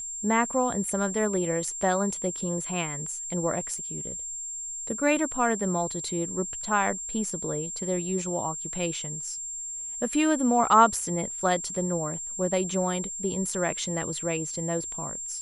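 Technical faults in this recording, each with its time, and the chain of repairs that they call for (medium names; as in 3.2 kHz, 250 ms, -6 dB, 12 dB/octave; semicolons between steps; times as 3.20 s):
whine 7.4 kHz -33 dBFS
3.78 s: dropout 2.4 ms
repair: band-stop 7.4 kHz, Q 30; interpolate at 3.78 s, 2.4 ms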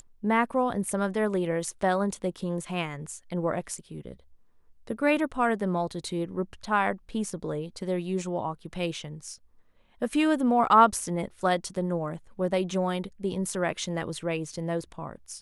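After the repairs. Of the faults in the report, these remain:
nothing left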